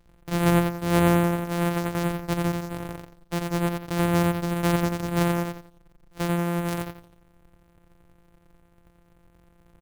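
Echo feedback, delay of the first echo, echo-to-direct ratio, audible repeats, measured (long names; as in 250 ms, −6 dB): 29%, 87 ms, −3.0 dB, 3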